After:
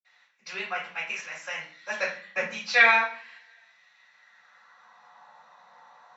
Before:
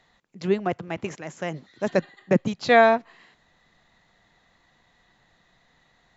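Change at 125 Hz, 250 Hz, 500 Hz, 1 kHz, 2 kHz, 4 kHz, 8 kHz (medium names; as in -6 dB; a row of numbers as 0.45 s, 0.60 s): under -20 dB, -21.0 dB, -13.0 dB, -5.0 dB, +5.0 dB, +2.5 dB, no reading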